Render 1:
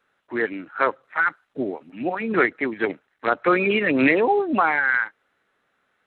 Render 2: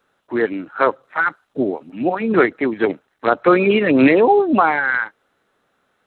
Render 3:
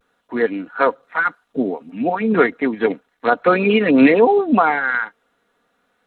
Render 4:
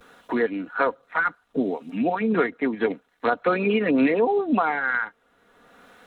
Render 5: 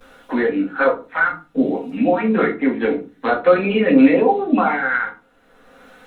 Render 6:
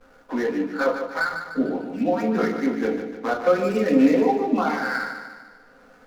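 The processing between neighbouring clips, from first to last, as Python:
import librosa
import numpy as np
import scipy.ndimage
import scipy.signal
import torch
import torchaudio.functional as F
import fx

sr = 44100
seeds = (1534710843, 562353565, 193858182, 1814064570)

y1 = fx.peak_eq(x, sr, hz=2000.0, db=-7.5, octaves=1.2)
y1 = y1 * 10.0 ** (7.0 / 20.0)
y2 = y1 + 0.46 * np.pad(y1, (int(4.2 * sr / 1000.0), 0))[:len(y1)]
y2 = fx.vibrato(y2, sr, rate_hz=0.36, depth_cents=29.0)
y2 = y2 * 10.0 ** (-1.0 / 20.0)
y3 = fx.band_squash(y2, sr, depth_pct=70)
y3 = y3 * 10.0 ** (-6.5 / 20.0)
y4 = fx.room_shoebox(y3, sr, seeds[0], volume_m3=140.0, walls='furnished', distance_m=2.1)
y5 = scipy.signal.medfilt(y4, 15)
y5 = fx.echo_feedback(y5, sr, ms=149, feedback_pct=50, wet_db=-8)
y5 = y5 * 10.0 ** (-5.5 / 20.0)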